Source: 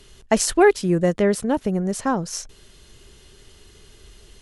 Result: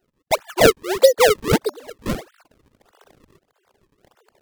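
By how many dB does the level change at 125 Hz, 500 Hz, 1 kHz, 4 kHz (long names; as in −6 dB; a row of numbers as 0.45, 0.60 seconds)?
−2.0, +3.5, +1.0, +7.5 decibels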